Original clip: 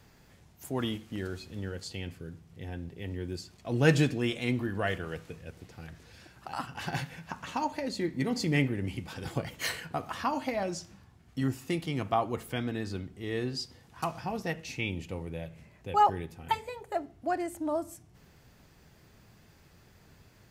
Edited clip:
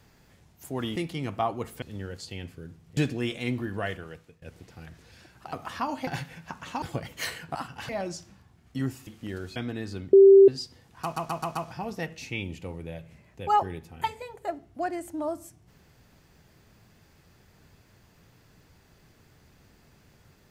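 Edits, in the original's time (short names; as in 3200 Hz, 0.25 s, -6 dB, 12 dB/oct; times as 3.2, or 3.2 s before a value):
0.96–1.45 swap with 11.69–12.55
2.6–3.98 cut
4.78–5.43 fade out, to -18 dB
6.54–6.88 swap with 9.97–10.51
7.63–9.24 cut
13.12–13.47 bleep 391 Hz -9.5 dBFS
14.02 stutter 0.13 s, 5 plays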